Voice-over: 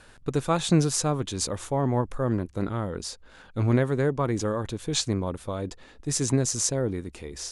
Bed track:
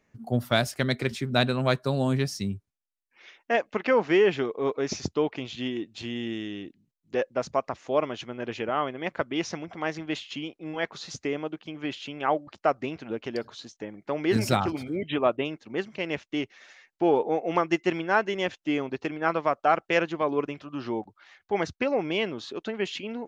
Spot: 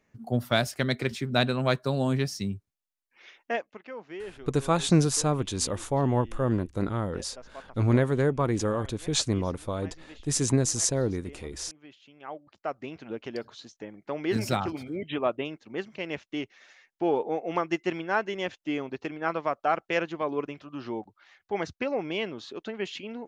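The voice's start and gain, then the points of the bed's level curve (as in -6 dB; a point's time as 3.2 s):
4.20 s, 0.0 dB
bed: 3.46 s -1 dB
3.81 s -18.5 dB
12.06 s -18.5 dB
13.05 s -3.5 dB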